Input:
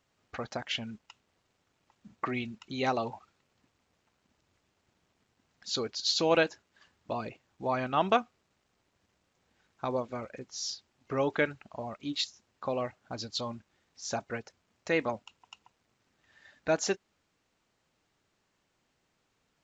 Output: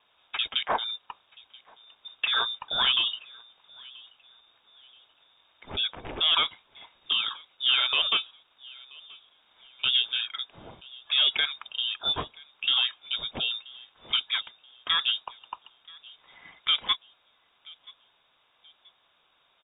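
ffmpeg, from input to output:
-filter_complex "[0:a]aexciter=amount=1.6:drive=8.2:freq=2500,alimiter=limit=0.112:level=0:latency=1:release=179,aresample=11025,aeval=exprs='0.119*sin(PI/2*1.41*val(0)/0.119)':c=same,aresample=44100,bandreject=f=1900:w=14,asplit=2[s0][s1];[s1]adelay=980,lowpass=f=1400:p=1,volume=0.0794,asplit=2[s2][s3];[s3]adelay=980,lowpass=f=1400:p=1,volume=0.39,asplit=2[s4][s5];[s5]adelay=980,lowpass=f=1400:p=1,volume=0.39[s6];[s0][s2][s4][s6]amix=inputs=4:normalize=0,lowpass=f=3200:t=q:w=0.5098,lowpass=f=3200:t=q:w=0.6013,lowpass=f=3200:t=q:w=0.9,lowpass=f=3200:t=q:w=2.563,afreqshift=-3800,volume=1.19"

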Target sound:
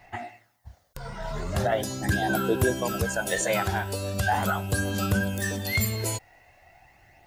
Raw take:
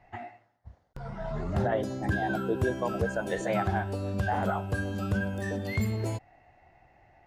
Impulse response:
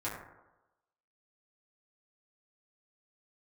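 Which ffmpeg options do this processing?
-af "crystalizer=i=6.5:c=0,aphaser=in_gain=1:out_gain=1:delay=2.1:decay=0.35:speed=0.4:type=sinusoidal"

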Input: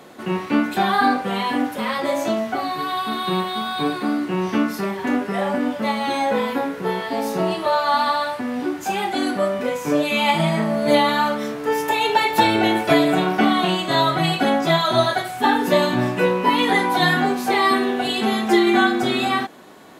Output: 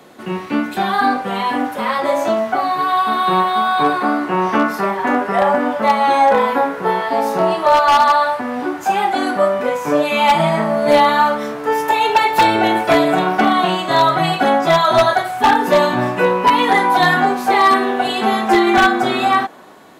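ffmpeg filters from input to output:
-filter_complex "[0:a]acrossover=split=600|1500[s0][s1][s2];[s1]dynaudnorm=f=880:g=3:m=5.62[s3];[s0][s3][s2]amix=inputs=3:normalize=0,aeval=exprs='0.596*(abs(mod(val(0)/0.596+3,4)-2)-1)':c=same"

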